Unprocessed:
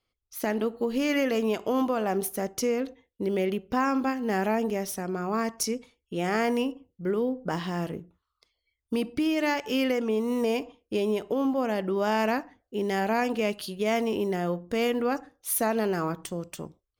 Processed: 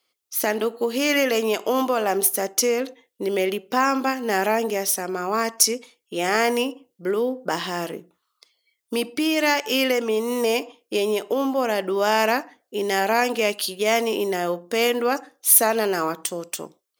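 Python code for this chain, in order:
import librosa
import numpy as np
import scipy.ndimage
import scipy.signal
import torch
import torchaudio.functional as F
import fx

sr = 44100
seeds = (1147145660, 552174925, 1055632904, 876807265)

y = scipy.signal.sosfilt(scipy.signal.butter(2, 320.0, 'highpass', fs=sr, output='sos'), x)
y = fx.high_shelf(y, sr, hz=3400.0, db=8.5)
y = F.gain(torch.from_numpy(y), 6.0).numpy()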